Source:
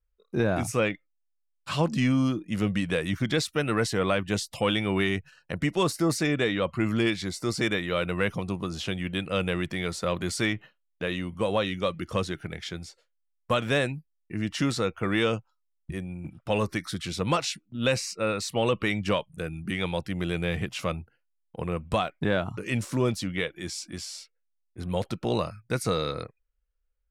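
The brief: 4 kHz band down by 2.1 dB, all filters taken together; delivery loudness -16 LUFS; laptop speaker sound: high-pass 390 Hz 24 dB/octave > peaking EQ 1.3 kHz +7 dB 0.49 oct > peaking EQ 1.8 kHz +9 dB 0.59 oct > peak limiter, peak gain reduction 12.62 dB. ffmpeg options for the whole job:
-af "highpass=f=390:w=0.5412,highpass=f=390:w=1.3066,equalizer=f=1300:t=o:w=0.49:g=7,equalizer=f=1800:t=o:w=0.59:g=9,equalizer=f=4000:t=o:g=-4,volume=6.68,alimiter=limit=0.596:level=0:latency=1"

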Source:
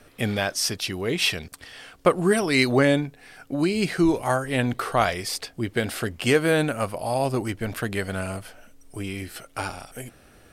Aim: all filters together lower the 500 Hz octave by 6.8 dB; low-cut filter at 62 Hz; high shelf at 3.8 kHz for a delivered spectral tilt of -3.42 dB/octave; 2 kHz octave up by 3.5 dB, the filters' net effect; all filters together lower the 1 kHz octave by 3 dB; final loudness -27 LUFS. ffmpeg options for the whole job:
-af "highpass=62,equalizer=f=500:t=o:g=-8.5,equalizer=f=1000:t=o:g=-3,equalizer=f=2000:t=o:g=4.5,highshelf=f=3800:g=4,volume=0.75"

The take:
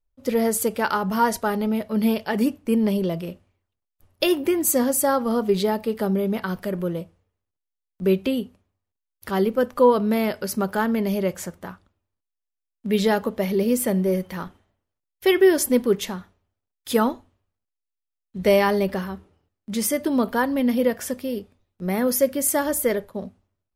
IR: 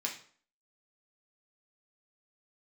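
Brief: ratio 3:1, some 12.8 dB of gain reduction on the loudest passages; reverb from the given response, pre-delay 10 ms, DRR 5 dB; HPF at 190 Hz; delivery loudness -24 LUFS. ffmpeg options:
-filter_complex "[0:a]highpass=190,acompressor=threshold=0.0355:ratio=3,asplit=2[s0][s1];[1:a]atrim=start_sample=2205,adelay=10[s2];[s1][s2]afir=irnorm=-1:irlink=0,volume=0.398[s3];[s0][s3]amix=inputs=2:normalize=0,volume=2.11"

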